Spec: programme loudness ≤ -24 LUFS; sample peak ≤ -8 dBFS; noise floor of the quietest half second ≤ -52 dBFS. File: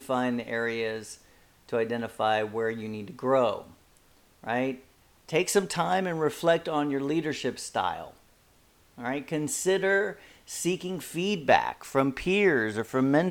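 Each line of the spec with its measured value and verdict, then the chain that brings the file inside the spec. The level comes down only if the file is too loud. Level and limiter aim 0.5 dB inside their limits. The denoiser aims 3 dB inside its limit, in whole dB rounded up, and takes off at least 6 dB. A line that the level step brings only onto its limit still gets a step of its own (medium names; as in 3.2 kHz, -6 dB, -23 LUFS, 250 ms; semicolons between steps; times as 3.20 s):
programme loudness -28.0 LUFS: pass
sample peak -5.5 dBFS: fail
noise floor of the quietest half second -61 dBFS: pass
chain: peak limiter -8.5 dBFS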